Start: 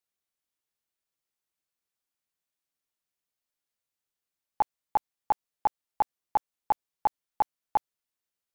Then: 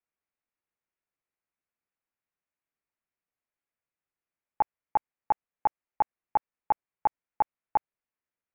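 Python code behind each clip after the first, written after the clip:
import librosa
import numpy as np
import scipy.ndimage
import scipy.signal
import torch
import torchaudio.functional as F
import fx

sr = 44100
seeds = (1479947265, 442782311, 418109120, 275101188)

y = scipy.signal.sosfilt(scipy.signal.butter(8, 2600.0, 'lowpass', fs=sr, output='sos'), x)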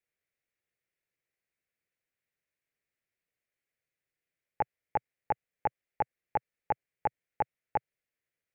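y = fx.graphic_eq(x, sr, hz=(125, 250, 500, 1000, 2000), db=(6, -3, 7, -11, 9))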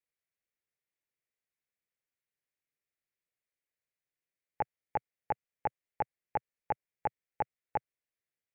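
y = fx.level_steps(x, sr, step_db=17)
y = F.gain(torch.from_numpy(y), 5.0).numpy()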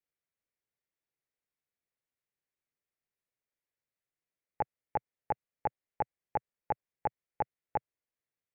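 y = fx.high_shelf(x, sr, hz=2200.0, db=-9.0)
y = F.gain(torch.from_numpy(y), 1.5).numpy()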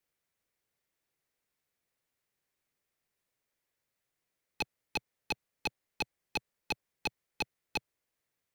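y = 10.0 ** (-33.0 / 20.0) * (np.abs((x / 10.0 ** (-33.0 / 20.0) + 3.0) % 4.0 - 2.0) - 1.0)
y = F.gain(torch.from_numpy(y), 8.0).numpy()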